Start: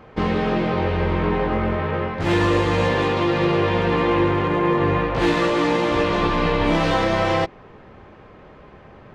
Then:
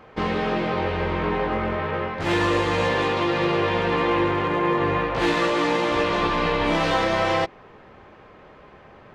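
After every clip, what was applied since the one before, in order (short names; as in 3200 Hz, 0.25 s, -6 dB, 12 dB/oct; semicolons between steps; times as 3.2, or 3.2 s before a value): low shelf 340 Hz -7 dB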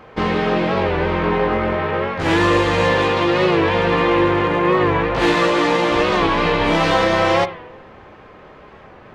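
on a send at -11 dB: reverb RT60 0.85 s, pre-delay 36 ms; on the sum: record warp 45 rpm, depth 100 cents; gain +5 dB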